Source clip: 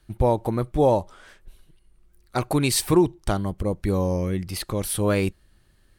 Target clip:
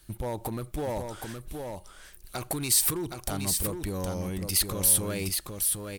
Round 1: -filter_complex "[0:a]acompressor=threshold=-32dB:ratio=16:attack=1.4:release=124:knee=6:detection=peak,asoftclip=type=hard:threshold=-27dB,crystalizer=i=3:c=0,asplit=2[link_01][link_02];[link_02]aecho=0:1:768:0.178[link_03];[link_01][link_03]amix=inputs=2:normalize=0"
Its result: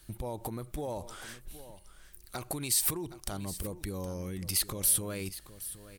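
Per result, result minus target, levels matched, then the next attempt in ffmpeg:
echo-to-direct −9.5 dB; downward compressor: peak gain reduction +5.5 dB
-filter_complex "[0:a]acompressor=threshold=-32dB:ratio=16:attack=1.4:release=124:knee=6:detection=peak,asoftclip=type=hard:threshold=-27dB,crystalizer=i=3:c=0,asplit=2[link_01][link_02];[link_02]aecho=0:1:768:0.531[link_03];[link_01][link_03]amix=inputs=2:normalize=0"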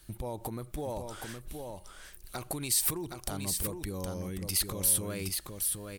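downward compressor: peak gain reduction +5.5 dB
-filter_complex "[0:a]acompressor=threshold=-26dB:ratio=16:attack=1.4:release=124:knee=6:detection=peak,asoftclip=type=hard:threshold=-27dB,crystalizer=i=3:c=0,asplit=2[link_01][link_02];[link_02]aecho=0:1:768:0.531[link_03];[link_01][link_03]amix=inputs=2:normalize=0"

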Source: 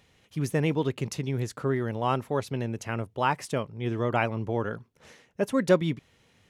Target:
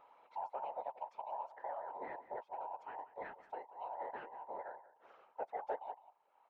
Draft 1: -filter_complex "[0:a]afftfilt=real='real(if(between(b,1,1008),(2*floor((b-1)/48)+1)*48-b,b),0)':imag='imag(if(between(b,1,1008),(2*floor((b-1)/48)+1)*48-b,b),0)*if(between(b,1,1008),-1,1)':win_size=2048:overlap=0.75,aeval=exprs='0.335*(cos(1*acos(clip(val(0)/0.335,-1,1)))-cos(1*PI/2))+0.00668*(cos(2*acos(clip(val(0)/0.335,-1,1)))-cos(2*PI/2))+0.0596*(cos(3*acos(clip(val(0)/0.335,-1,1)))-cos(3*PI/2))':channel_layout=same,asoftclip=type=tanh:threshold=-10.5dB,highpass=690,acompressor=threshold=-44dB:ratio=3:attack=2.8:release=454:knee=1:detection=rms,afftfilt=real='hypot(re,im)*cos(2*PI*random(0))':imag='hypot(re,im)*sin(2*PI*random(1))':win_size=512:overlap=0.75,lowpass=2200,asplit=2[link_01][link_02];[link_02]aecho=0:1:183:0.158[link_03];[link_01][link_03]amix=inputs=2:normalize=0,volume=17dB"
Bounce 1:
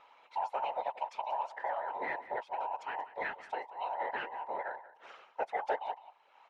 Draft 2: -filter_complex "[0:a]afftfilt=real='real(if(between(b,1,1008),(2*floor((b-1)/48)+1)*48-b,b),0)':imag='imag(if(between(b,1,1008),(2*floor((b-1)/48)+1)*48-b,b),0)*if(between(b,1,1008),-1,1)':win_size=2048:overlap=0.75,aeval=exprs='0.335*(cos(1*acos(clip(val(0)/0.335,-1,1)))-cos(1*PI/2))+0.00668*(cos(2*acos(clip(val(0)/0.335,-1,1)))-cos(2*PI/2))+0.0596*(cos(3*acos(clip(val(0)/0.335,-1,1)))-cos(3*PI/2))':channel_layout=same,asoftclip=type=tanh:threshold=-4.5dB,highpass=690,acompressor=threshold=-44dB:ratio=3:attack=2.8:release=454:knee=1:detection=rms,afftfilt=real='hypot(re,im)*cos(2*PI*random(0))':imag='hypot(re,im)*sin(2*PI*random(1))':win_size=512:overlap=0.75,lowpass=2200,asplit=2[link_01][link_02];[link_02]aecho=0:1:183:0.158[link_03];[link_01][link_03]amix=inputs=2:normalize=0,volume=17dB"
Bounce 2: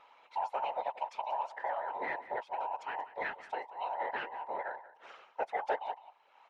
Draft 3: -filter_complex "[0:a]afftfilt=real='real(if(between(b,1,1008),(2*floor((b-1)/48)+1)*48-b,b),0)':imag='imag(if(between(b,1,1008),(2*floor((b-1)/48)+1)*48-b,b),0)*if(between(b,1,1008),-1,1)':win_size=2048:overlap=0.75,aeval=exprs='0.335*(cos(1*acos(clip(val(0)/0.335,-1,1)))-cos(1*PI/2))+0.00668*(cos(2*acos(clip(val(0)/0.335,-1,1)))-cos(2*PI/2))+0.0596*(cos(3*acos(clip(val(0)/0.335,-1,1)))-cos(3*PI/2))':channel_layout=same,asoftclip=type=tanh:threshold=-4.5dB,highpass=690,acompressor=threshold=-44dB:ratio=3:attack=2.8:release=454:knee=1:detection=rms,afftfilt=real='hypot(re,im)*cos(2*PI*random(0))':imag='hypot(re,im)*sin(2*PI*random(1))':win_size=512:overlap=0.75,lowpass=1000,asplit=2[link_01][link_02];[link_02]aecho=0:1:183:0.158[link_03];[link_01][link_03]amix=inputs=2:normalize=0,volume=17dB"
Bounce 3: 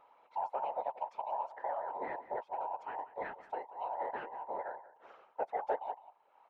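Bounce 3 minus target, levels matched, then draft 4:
downward compressor: peak gain reduction −6 dB
-filter_complex "[0:a]afftfilt=real='real(if(between(b,1,1008),(2*floor((b-1)/48)+1)*48-b,b),0)':imag='imag(if(between(b,1,1008),(2*floor((b-1)/48)+1)*48-b,b),0)*if(between(b,1,1008),-1,1)':win_size=2048:overlap=0.75,aeval=exprs='0.335*(cos(1*acos(clip(val(0)/0.335,-1,1)))-cos(1*PI/2))+0.00668*(cos(2*acos(clip(val(0)/0.335,-1,1)))-cos(2*PI/2))+0.0596*(cos(3*acos(clip(val(0)/0.335,-1,1)))-cos(3*PI/2))':channel_layout=same,asoftclip=type=tanh:threshold=-4.5dB,highpass=690,acompressor=threshold=-53dB:ratio=3:attack=2.8:release=454:knee=1:detection=rms,afftfilt=real='hypot(re,im)*cos(2*PI*random(0))':imag='hypot(re,im)*sin(2*PI*random(1))':win_size=512:overlap=0.75,lowpass=1000,asplit=2[link_01][link_02];[link_02]aecho=0:1:183:0.158[link_03];[link_01][link_03]amix=inputs=2:normalize=0,volume=17dB"

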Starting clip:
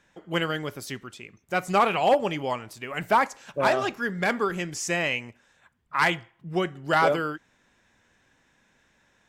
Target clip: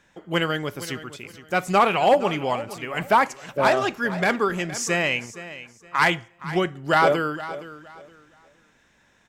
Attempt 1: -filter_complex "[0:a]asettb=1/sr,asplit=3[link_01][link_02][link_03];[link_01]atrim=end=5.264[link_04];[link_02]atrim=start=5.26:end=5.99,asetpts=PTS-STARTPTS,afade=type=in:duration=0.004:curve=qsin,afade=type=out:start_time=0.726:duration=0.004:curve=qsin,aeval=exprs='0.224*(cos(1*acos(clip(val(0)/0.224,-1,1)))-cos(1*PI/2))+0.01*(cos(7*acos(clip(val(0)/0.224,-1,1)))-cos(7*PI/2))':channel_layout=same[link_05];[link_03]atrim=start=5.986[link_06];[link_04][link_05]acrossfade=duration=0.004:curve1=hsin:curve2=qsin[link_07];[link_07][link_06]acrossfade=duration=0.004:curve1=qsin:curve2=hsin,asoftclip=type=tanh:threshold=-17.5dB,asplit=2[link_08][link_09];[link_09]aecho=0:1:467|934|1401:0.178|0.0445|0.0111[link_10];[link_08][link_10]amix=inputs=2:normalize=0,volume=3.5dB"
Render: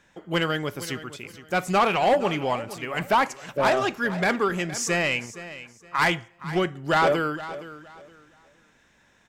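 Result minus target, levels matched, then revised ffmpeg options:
soft clipping: distortion +16 dB
-filter_complex "[0:a]asettb=1/sr,asplit=3[link_01][link_02][link_03];[link_01]atrim=end=5.264[link_04];[link_02]atrim=start=5.26:end=5.99,asetpts=PTS-STARTPTS,afade=type=in:duration=0.004:curve=qsin,afade=type=out:start_time=0.726:duration=0.004:curve=qsin,aeval=exprs='0.224*(cos(1*acos(clip(val(0)/0.224,-1,1)))-cos(1*PI/2))+0.01*(cos(7*acos(clip(val(0)/0.224,-1,1)))-cos(7*PI/2))':channel_layout=same[link_05];[link_03]atrim=start=5.986[link_06];[link_04][link_05]acrossfade=duration=0.004:curve1=hsin:curve2=qsin[link_07];[link_07][link_06]acrossfade=duration=0.004:curve1=qsin:curve2=hsin,asoftclip=type=tanh:threshold=-7.5dB,asplit=2[link_08][link_09];[link_09]aecho=0:1:467|934|1401:0.178|0.0445|0.0111[link_10];[link_08][link_10]amix=inputs=2:normalize=0,volume=3.5dB"

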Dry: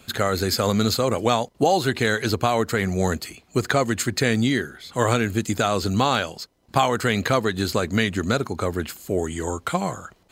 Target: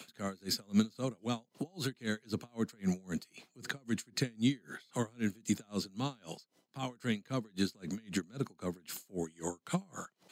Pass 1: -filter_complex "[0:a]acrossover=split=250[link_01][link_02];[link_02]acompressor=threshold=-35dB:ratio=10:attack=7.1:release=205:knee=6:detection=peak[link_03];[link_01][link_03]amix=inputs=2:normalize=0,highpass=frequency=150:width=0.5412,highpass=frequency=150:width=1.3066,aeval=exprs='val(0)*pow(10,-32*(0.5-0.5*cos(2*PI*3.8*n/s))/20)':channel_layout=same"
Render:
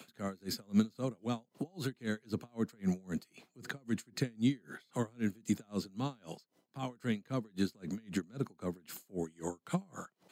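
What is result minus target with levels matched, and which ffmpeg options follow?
4,000 Hz band −5.0 dB
-filter_complex "[0:a]acrossover=split=250[link_01][link_02];[link_02]acompressor=threshold=-35dB:ratio=10:attack=7.1:release=205:knee=6:detection=peak,equalizer=frequency=5300:width_type=o:width=2.8:gain=6[link_03];[link_01][link_03]amix=inputs=2:normalize=0,highpass=frequency=150:width=0.5412,highpass=frequency=150:width=1.3066,aeval=exprs='val(0)*pow(10,-32*(0.5-0.5*cos(2*PI*3.8*n/s))/20)':channel_layout=same"

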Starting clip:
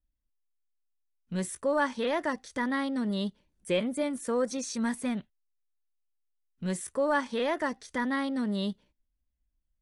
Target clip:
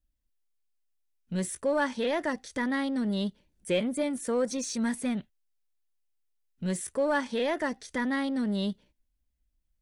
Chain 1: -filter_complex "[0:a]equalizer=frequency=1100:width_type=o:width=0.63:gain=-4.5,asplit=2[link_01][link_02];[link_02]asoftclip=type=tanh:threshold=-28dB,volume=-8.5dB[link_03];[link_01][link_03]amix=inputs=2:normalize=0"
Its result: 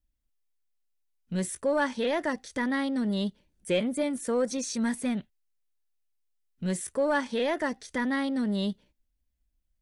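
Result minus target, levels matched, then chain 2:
soft clipping: distortion −6 dB
-filter_complex "[0:a]equalizer=frequency=1100:width_type=o:width=0.63:gain=-4.5,asplit=2[link_01][link_02];[link_02]asoftclip=type=tanh:threshold=-35.5dB,volume=-8.5dB[link_03];[link_01][link_03]amix=inputs=2:normalize=0"

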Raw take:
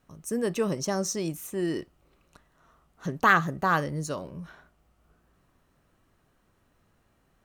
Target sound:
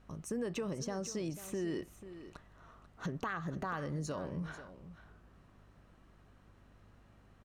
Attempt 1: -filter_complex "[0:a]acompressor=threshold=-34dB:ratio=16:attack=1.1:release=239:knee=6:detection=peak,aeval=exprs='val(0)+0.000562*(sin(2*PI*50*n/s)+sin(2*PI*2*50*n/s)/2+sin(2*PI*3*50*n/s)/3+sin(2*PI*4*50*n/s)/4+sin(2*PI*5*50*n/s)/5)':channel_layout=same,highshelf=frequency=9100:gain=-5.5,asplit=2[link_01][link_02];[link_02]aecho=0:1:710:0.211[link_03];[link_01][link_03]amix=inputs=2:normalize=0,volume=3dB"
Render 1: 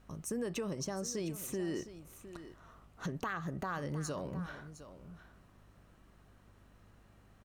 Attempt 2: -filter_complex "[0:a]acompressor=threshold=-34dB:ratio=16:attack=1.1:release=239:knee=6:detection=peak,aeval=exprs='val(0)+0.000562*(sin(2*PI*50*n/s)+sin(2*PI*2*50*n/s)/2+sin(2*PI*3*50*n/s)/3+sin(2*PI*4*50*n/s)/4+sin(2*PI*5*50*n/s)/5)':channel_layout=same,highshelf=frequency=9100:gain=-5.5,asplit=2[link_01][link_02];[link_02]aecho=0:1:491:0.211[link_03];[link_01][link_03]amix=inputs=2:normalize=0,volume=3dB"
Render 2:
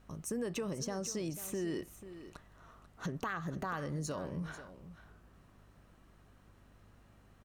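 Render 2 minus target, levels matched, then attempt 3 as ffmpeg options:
8,000 Hz band +3.5 dB
-filter_complex "[0:a]acompressor=threshold=-34dB:ratio=16:attack=1.1:release=239:knee=6:detection=peak,aeval=exprs='val(0)+0.000562*(sin(2*PI*50*n/s)+sin(2*PI*2*50*n/s)/2+sin(2*PI*3*50*n/s)/3+sin(2*PI*4*50*n/s)/4+sin(2*PI*5*50*n/s)/5)':channel_layout=same,highshelf=frequency=9100:gain=-17,asplit=2[link_01][link_02];[link_02]aecho=0:1:491:0.211[link_03];[link_01][link_03]amix=inputs=2:normalize=0,volume=3dB"

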